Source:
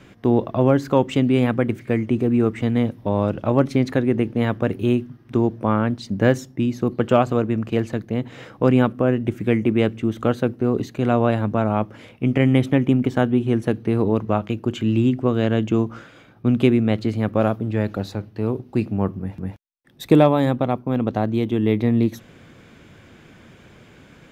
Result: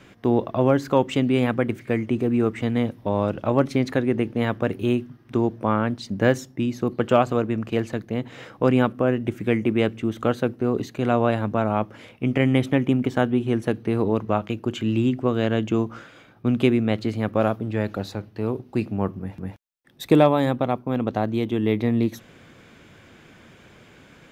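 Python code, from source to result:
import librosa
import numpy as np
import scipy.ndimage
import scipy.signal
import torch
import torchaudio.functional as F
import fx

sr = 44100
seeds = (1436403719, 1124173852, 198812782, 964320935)

y = fx.low_shelf(x, sr, hz=350.0, db=-4.5)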